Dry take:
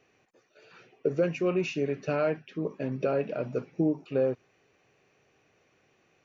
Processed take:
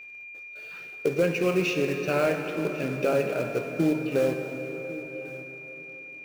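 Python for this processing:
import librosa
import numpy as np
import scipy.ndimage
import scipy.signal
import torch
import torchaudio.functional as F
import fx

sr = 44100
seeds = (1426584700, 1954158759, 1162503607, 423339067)

p1 = fx.peak_eq(x, sr, hz=3100.0, db=5.5, octaves=2.4)
p2 = fx.quant_companded(p1, sr, bits=4)
p3 = p1 + (p2 * 10.0 ** (-4.0 / 20.0))
p4 = p3 + 10.0 ** (-38.0 / 20.0) * np.sin(2.0 * np.pi * 2400.0 * np.arange(len(p3)) / sr)
p5 = p4 + fx.echo_single(p4, sr, ms=1099, db=-18.0, dry=0)
p6 = fx.rev_plate(p5, sr, seeds[0], rt60_s=4.6, hf_ratio=0.65, predelay_ms=0, drr_db=5.0)
y = p6 * 10.0 ** (-3.0 / 20.0)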